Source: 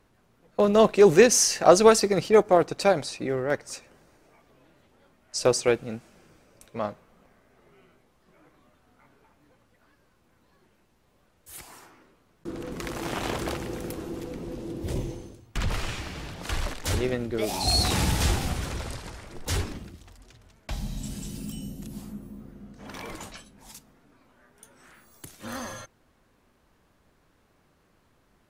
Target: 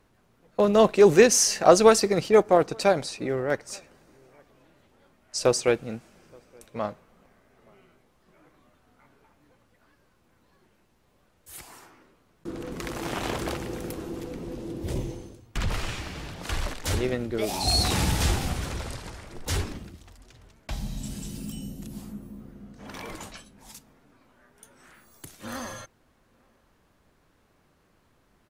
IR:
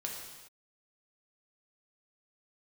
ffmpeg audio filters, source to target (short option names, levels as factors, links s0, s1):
-filter_complex "[0:a]asplit=2[s0][s1];[s1]adelay=874.6,volume=0.0316,highshelf=f=4000:g=-19.7[s2];[s0][s2]amix=inputs=2:normalize=0"